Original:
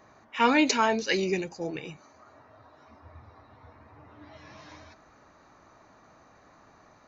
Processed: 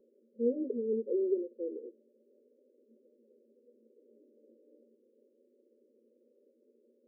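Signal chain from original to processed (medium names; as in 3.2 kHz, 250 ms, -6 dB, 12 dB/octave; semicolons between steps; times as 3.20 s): FFT band-pass 220–600 Hz; static phaser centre 430 Hz, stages 8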